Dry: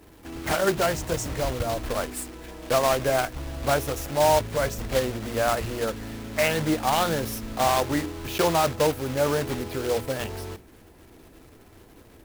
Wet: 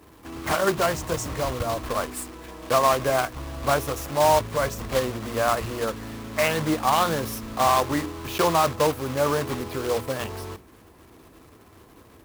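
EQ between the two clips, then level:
high-pass filter 49 Hz
parametric band 1,100 Hz +8.5 dB 0.32 octaves
0.0 dB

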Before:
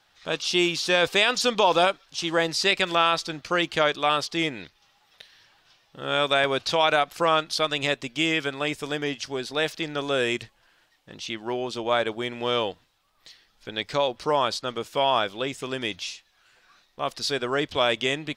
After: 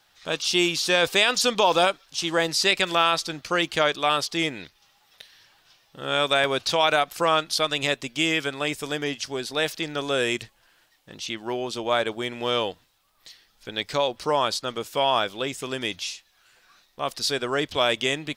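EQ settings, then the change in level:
high-shelf EQ 8,000 Hz +10.5 dB
0.0 dB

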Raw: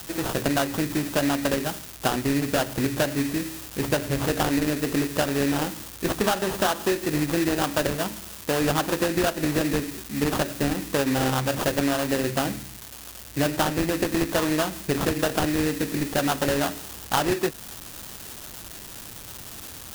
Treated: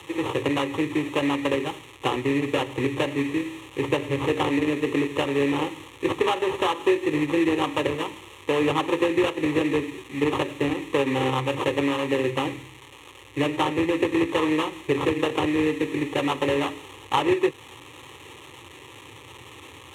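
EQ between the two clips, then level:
high-pass filter 93 Hz 24 dB per octave
low-pass filter 4,500 Hz 12 dB per octave
phaser with its sweep stopped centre 1,000 Hz, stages 8
+4.5 dB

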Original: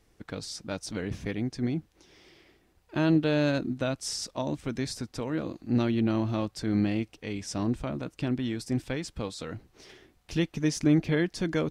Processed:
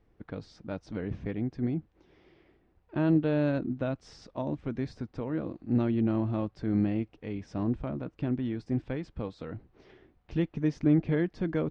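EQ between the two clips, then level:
head-to-tape spacing loss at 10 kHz 37 dB
0.0 dB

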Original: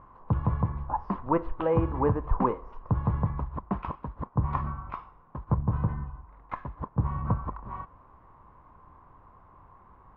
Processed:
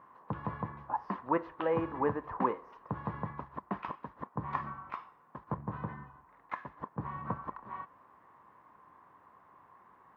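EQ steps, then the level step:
high-pass filter 200 Hz 12 dB per octave
parametric band 1,800 Hz +7 dB 0.3 octaves
high-shelf EQ 2,300 Hz +8.5 dB
−5.0 dB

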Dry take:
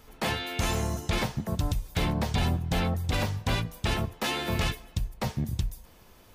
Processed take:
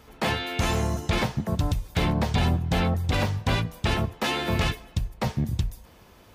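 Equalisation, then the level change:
high-pass filter 41 Hz
high-shelf EQ 6,000 Hz −7 dB
+4.0 dB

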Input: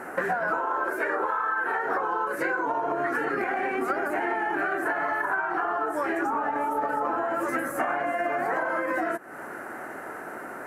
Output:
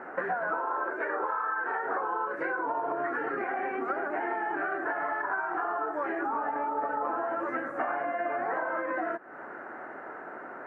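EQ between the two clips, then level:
low-pass filter 1,800 Hz 12 dB per octave
low-shelf EQ 200 Hz −10 dB
−2.5 dB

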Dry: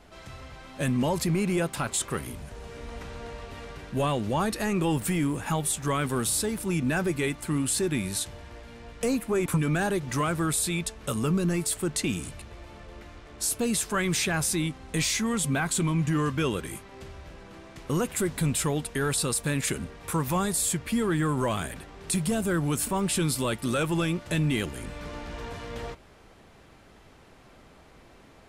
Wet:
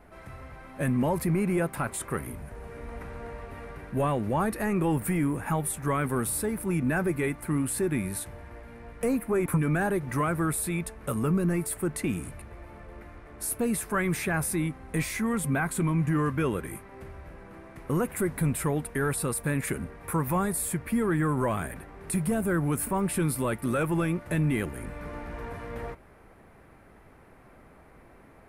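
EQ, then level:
flat-topped bell 4,700 Hz −13 dB
0.0 dB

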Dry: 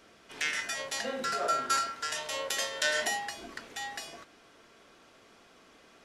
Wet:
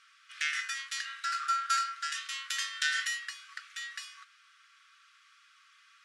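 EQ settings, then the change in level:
linear-phase brick-wall high-pass 1,100 Hz
low-pass filter 10,000 Hz 24 dB per octave
parametric band 7,000 Hz −3 dB 0.94 octaves
0.0 dB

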